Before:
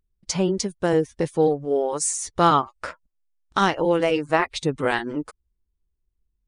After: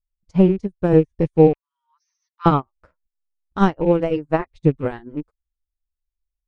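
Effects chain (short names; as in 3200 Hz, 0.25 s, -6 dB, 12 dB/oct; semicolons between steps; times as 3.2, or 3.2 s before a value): rattling part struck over -27 dBFS, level -28 dBFS; 1.53–2.46 brick-wall FIR band-pass 890–6300 Hz; tilt -4 dB/oct; upward expander 2.5:1, over -32 dBFS; gain +3 dB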